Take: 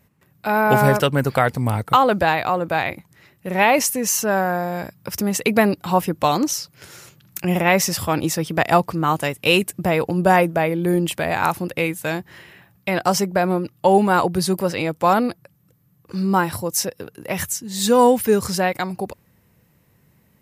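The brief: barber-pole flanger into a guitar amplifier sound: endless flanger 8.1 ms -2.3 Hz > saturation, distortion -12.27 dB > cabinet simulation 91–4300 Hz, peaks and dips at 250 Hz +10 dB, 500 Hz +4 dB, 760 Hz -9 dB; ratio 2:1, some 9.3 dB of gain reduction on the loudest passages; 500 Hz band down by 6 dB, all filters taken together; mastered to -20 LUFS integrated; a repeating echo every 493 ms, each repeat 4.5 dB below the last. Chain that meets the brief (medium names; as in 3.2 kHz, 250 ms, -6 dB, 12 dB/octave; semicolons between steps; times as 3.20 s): peaking EQ 500 Hz -9 dB; compression 2:1, threshold -30 dBFS; feedback delay 493 ms, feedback 60%, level -4.5 dB; endless flanger 8.1 ms -2.3 Hz; saturation -27.5 dBFS; cabinet simulation 91–4300 Hz, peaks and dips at 250 Hz +10 dB, 500 Hz +4 dB, 760 Hz -9 dB; trim +13.5 dB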